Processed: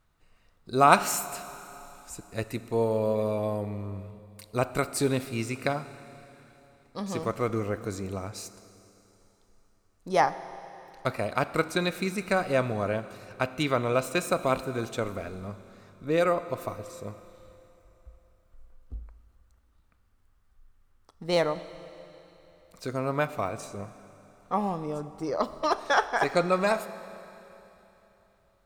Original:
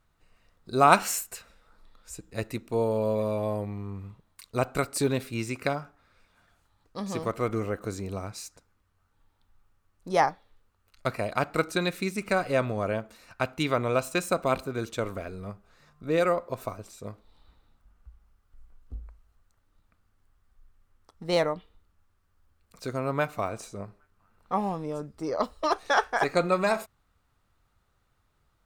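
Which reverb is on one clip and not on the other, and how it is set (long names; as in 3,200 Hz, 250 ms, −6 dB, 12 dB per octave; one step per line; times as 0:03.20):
four-comb reverb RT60 3.3 s, combs from 27 ms, DRR 13.5 dB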